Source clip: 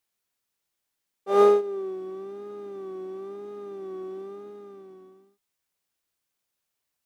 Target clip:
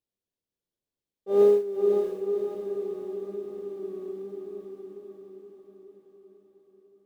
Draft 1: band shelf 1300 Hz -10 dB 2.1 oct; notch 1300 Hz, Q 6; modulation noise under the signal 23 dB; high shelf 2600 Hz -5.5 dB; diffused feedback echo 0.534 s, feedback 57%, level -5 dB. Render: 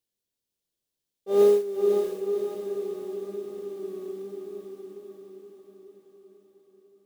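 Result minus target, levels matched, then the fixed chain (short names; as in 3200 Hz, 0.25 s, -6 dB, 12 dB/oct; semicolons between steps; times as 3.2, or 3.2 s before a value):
4000 Hz band +7.0 dB
band shelf 1300 Hz -10 dB 2.1 oct; notch 1300 Hz, Q 6; modulation noise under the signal 23 dB; high shelf 2600 Hz -17 dB; diffused feedback echo 0.534 s, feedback 57%, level -5 dB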